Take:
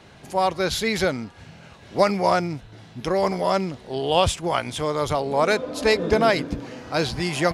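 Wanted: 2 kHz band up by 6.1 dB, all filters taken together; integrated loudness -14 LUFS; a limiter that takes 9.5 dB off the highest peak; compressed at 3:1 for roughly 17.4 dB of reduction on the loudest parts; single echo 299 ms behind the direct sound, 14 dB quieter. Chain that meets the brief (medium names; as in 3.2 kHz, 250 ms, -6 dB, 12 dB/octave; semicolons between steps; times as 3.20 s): peaking EQ 2 kHz +7.5 dB; compression 3:1, threshold -37 dBFS; peak limiter -28 dBFS; delay 299 ms -14 dB; trim +25 dB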